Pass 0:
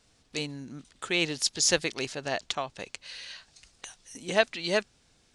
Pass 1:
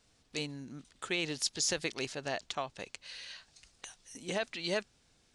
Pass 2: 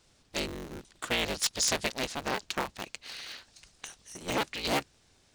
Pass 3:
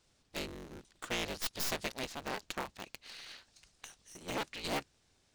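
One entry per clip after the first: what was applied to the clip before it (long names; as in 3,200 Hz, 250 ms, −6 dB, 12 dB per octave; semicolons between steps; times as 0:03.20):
brickwall limiter −16.5 dBFS, peak gain reduction 10 dB; level −4 dB
sub-harmonics by changed cycles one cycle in 3, inverted; level +4 dB
stylus tracing distortion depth 0.12 ms; level −7 dB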